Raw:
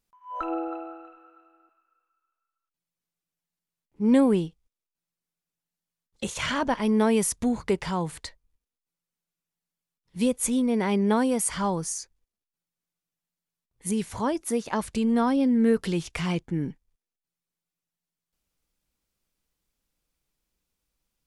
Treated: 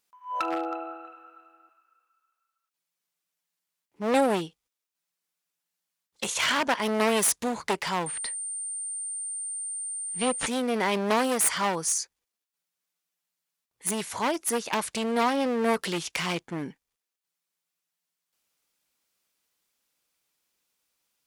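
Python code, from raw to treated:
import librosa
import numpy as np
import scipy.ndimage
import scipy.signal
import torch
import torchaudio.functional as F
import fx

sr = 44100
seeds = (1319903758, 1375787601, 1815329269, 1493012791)

y = np.minimum(x, 2.0 * 10.0 ** (-25.0 / 20.0) - x)
y = fx.highpass(y, sr, hz=800.0, slope=6)
y = fx.pwm(y, sr, carrier_hz=8900.0, at=(8.06, 10.47))
y = y * 10.0 ** (6.0 / 20.0)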